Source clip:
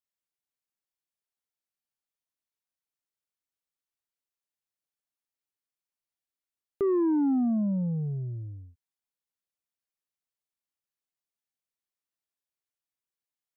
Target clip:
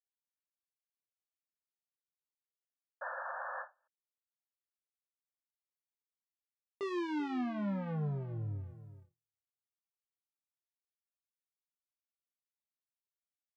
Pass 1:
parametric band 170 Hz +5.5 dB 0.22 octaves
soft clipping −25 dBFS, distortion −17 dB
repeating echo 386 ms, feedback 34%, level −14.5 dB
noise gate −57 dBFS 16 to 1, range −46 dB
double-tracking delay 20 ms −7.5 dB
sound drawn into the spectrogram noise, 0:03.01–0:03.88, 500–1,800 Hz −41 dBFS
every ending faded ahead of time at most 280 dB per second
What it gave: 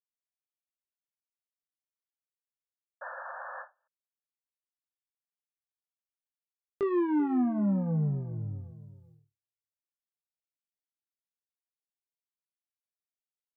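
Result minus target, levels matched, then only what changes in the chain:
soft clipping: distortion −10 dB
change: soft clipping −36 dBFS, distortion −8 dB

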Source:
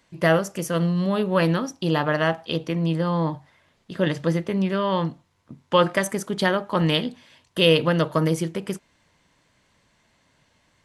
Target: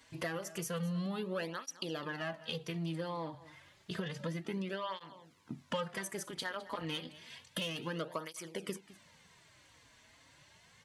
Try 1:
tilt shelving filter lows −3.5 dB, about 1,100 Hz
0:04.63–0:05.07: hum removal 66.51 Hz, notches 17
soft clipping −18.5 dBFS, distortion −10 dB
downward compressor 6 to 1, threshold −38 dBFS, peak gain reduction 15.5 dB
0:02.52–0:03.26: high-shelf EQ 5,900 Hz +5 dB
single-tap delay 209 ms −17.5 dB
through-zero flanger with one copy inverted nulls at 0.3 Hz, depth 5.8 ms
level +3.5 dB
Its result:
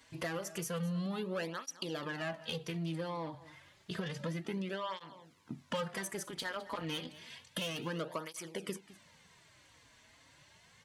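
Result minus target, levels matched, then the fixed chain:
soft clipping: distortion +6 dB
tilt shelving filter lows −3.5 dB, about 1,100 Hz
0:04.63–0:05.07: hum removal 66.51 Hz, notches 17
soft clipping −12 dBFS, distortion −16 dB
downward compressor 6 to 1, threshold −38 dBFS, peak gain reduction 19.5 dB
0:02.52–0:03.26: high-shelf EQ 5,900 Hz +5 dB
single-tap delay 209 ms −17.5 dB
through-zero flanger with one copy inverted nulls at 0.3 Hz, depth 5.8 ms
level +3.5 dB

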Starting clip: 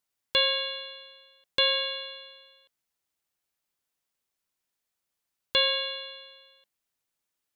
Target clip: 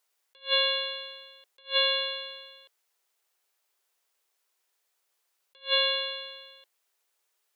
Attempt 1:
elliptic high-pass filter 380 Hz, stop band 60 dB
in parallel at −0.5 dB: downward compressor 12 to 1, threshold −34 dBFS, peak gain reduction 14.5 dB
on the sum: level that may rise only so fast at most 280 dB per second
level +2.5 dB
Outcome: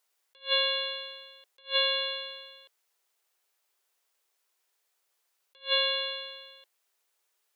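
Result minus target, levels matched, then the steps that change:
downward compressor: peak gain reduction +5.5 dB
change: downward compressor 12 to 1, threshold −28 dBFS, peak gain reduction 9 dB

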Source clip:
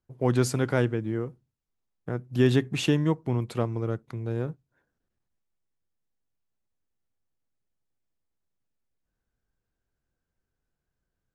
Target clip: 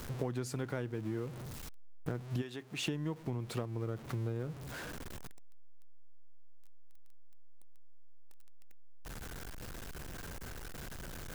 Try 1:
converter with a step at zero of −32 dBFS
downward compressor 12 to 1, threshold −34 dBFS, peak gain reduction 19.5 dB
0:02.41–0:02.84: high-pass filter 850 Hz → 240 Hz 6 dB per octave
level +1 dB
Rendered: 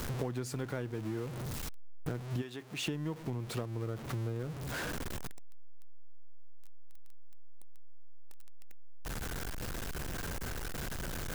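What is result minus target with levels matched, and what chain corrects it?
converter with a step at zero: distortion +6 dB
converter with a step at zero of −38.5 dBFS
downward compressor 12 to 1, threshold −34 dBFS, peak gain reduction 19 dB
0:02.41–0:02.84: high-pass filter 850 Hz → 240 Hz 6 dB per octave
level +1 dB

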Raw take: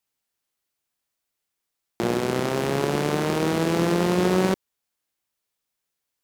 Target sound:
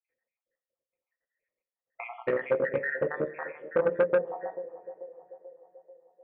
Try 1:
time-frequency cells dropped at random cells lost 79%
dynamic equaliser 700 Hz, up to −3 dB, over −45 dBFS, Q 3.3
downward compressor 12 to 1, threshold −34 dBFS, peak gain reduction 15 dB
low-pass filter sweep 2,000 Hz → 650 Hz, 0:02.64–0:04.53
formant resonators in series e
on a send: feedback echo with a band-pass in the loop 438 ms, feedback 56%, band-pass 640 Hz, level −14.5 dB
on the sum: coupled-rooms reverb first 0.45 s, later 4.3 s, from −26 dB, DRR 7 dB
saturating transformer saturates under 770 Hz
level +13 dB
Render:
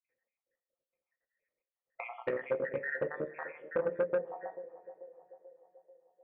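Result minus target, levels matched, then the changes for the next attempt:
downward compressor: peak gain reduction +7.5 dB
change: downward compressor 12 to 1, threshold −26 dBFS, peak gain reduction 8 dB

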